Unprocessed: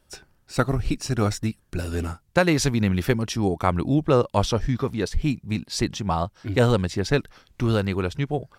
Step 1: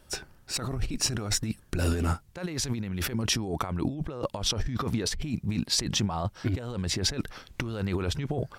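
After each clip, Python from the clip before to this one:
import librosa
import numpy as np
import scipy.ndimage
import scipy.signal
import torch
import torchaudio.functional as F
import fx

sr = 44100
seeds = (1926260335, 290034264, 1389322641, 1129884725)

y = fx.over_compress(x, sr, threshold_db=-30.0, ratio=-1.0)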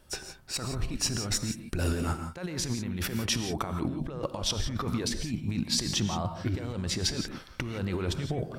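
y = fx.rev_gated(x, sr, seeds[0], gate_ms=190, shape='rising', drr_db=7.5)
y = F.gain(torch.from_numpy(y), -2.0).numpy()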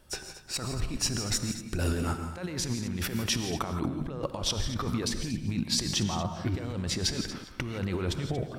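y = x + 10.0 ** (-14.0 / 20.0) * np.pad(x, (int(233 * sr / 1000.0), 0))[:len(x)]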